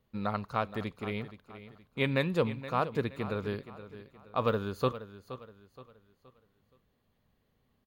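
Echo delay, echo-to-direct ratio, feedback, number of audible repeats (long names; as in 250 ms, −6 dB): 472 ms, −13.5 dB, 38%, 3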